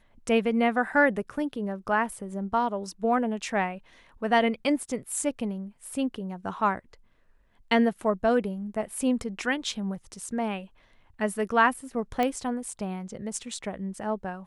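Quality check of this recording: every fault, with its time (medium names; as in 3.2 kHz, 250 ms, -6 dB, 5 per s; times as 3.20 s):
12.23 s: pop -14 dBFS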